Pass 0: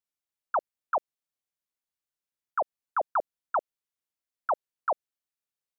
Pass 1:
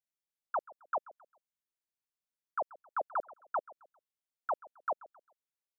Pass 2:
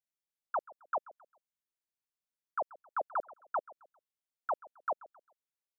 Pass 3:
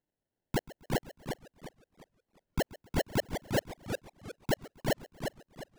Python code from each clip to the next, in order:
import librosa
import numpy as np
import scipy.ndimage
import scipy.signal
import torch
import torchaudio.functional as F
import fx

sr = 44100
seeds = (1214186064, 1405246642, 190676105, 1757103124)

y1 = fx.echo_feedback(x, sr, ms=133, feedback_pct=35, wet_db=-20.0)
y1 = y1 * librosa.db_to_amplitude(-6.5)
y2 = y1
y3 = fx.sample_hold(y2, sr, seeds[0], rate_hz=1200.0, jitter_pct=0)
y3 = fx.echo_warbled(y3, sr, ms=359, feedback_pct=34, rate_hz=2.8, cents=173, wet_db=-6.0)
y3 = y3 * librosa.db_to_amplitude(3.5)